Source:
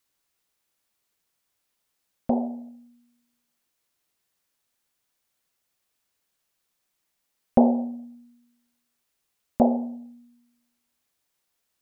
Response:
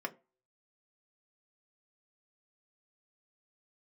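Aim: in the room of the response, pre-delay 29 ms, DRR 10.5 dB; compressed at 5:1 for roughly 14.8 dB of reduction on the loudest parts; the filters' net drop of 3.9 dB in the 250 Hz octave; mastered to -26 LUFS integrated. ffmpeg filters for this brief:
-filter_complex "[0:a]equalizer=f=250:t=o:g=-4,acompressor=threshold=-32dB:ratio=5,asplit=2[a][b];[1:a]atrim=start_sample=2205,adelay=29[c];[b][c]afir=irnorm=-1:irlink=0,volume=-13dB[d];[a][d]amix=inputs=2:normalize=0,volume=14.5dB"

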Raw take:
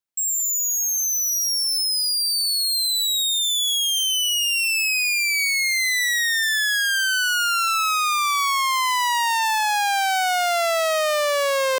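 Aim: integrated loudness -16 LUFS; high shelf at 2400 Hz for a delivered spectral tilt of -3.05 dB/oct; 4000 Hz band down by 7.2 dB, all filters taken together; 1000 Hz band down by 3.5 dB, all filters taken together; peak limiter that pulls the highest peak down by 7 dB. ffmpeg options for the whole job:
-af "equalizer=f=1k:t=o:g=-3.5,highshelf=f=2.4k:g=-3.5,equalizer=f=4k:t=o:g=-6,volume=11.5dB,alimiter=limit=-12.5dB:level=0:latency=1"

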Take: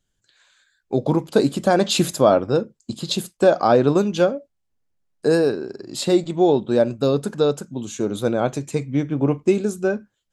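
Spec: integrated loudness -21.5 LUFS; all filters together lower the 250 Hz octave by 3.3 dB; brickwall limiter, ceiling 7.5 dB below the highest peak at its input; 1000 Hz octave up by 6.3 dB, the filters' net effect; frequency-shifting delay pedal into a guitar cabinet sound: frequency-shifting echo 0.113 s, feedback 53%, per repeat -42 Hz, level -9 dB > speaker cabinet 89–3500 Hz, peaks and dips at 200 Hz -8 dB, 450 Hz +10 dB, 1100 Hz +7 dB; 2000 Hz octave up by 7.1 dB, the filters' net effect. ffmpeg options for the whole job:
-filter_complex "[0:a]equalizer=f=250:t=o:g=-6,equalizer=f=1k:t=o:g=4,equalizer=f=2k:t=o:g=7.5,alimiter=limit=-9dB:level=0:latency=1,asplit=7[a][b][c][d][e][f][g];[b]adelay=113,afreqshift=-42,volume=-9dB[h];[c]adelay=226,afreqshift=-84,volume=-14.5dB[i];[d]adelay=339,afreqshift=-126,volume=-20dB[j];[e]adelay=452,afreqshift=-168,volume=-25.5dB[k];[f]adelay=565,afreqshift=-210,volume=-31.1dB[l];[g]adelay=678,afreqshift=-252,volume=-36.6dB[m];[a][h][i][j][k][l][m]amix=inputs=7:normalize=0,highpass=89,equalizer=f=200:t=q:w=4:g=-8,equalizer=f=450:t=q:w=4:g=10,equalizer=f=1.1k:t=q:w=4:g=7,lowpass=f=3.5k:w=0.5412,lowpass=f=3.5k:w=1.3066,volume=-3.5dB"

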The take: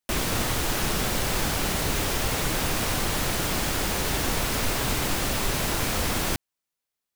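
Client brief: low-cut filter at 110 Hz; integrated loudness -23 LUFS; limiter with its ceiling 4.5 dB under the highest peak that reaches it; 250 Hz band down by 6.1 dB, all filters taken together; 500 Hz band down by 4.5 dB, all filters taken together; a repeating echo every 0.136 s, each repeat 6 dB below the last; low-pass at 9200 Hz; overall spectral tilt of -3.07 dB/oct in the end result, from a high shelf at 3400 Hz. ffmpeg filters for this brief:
-af "highpass=110,lowpass=9.2k,equalizer=f=250:t=o:g=-7,equalizer=f=500:t=o:g=-3.5,highshelf=f=3.4k:g=-7,alimiter=limit=-23.5dB:level=0:latency=1,aecho=1:1:136|272|408|544|680|816:0.501|0.251|0.125|0.0626|0.0313|0.0157,volume=8dB"

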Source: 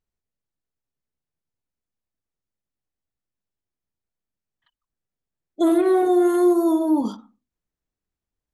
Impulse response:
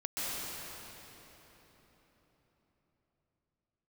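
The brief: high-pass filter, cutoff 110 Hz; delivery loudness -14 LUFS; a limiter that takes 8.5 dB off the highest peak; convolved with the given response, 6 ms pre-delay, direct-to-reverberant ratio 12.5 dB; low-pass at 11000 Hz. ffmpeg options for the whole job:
-filter_complex "[0:a]highpass=110,lowpass=11k,alimiter=limit=-18.5dB:level=0:latency=1,asplit=2[a][b];[1:a]atrim=start_sample=2205,adelay=6[c];[b][c]afir=irnorm=-1:irlink=0,volume=-18.5dB[d];[a][d]amix=inputs=2:normalize=0,volume=10.5dB"

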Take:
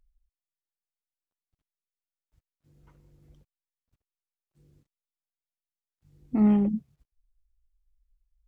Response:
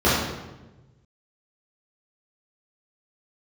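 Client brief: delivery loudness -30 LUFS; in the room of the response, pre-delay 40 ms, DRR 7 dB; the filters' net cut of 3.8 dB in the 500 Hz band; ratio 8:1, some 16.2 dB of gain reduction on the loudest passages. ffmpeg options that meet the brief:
-filter_complex "[0:a]equalizer=f=500:t=o:g=-5,acompressor=threshold=-35dB:ratio=8,asplit=2[a][b];[1:a]atrim=start_sample=2205,adelay=40[c];[b][c]afir=irnorm=-1:irlink=0,volume=-28.5dB[d];[a][d]amix=inputs=2:normalize=0,volume=7.5dB"

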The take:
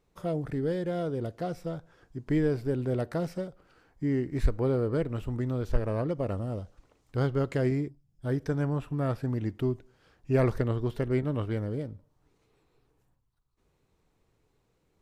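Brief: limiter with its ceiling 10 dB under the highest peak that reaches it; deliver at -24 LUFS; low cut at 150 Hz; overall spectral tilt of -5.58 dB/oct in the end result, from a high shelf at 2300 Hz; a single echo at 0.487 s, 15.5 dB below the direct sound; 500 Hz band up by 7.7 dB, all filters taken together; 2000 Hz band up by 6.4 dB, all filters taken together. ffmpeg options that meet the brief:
-af "highpass=150,equalizer=f=500:t=o:g=9,equalizer=f=2k:t=o:g=6,highshelf=f=2.3k:g=3,alimiter=limit=-17.5dB:level=0:latency=1,aecho=1:1:487:0.168,volume=5dB"

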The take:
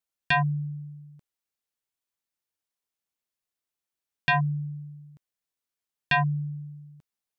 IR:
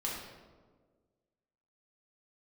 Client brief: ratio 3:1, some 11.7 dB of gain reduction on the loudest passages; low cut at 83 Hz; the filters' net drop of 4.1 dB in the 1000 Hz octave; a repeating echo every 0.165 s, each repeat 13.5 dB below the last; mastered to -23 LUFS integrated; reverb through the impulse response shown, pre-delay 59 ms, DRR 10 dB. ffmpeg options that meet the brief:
-filter_complex "[0:a]highpass=83,equalizer=f=1k:t=o:g=-5.5,acompressor=threshold=-37dB:ratio=3,aecho=1:1:165|330:0.211|0.0444,asplit=2[a][b];[1:a]atrim=start_sample=2205,adelay=59[c];[b][c]afir=irnorm=-1:irlink=0,volume=-13.5dB[d];[a][d]amix=inputs=2:normalize=0,volume=16.5dB"

